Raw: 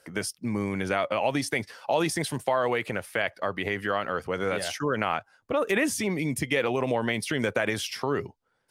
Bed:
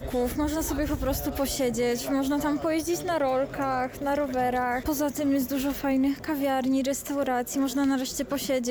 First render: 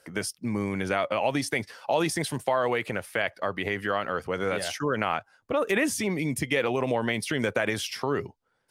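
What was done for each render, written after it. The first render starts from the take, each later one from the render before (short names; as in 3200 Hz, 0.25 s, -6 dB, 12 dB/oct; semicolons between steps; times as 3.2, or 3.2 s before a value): nothing audible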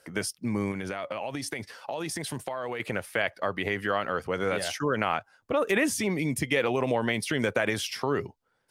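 0.71–2.8 compressor, threshold -29 dBFS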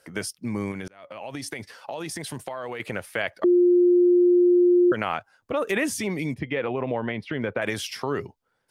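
0.88–1.37 fade in; 3.44–4.92 bleep 354 Hz -14 dBFS; 6.34–7.62 air absorption 370 m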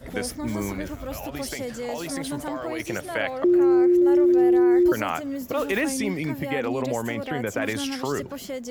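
add bed -6.5 dB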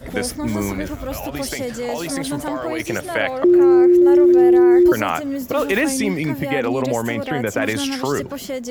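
gain +6 dB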